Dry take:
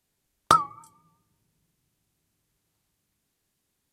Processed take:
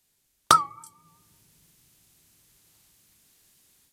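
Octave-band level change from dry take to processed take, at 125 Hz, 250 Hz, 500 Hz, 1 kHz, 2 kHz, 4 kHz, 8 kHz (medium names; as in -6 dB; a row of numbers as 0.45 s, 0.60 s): -1.5 dB, -1.5 dB, -1.0 dB, +1.0 dB, +2.0 dB, +5.5 dB, +7.0 dB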